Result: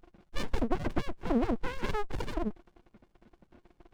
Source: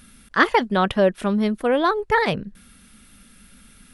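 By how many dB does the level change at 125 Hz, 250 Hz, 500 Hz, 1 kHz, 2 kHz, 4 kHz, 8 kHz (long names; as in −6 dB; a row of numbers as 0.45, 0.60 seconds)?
−8.5 dB, −10.5 dB, −15.5 dB, −17.0 dB, −19.5 dB, −15.0 dB, can't be measured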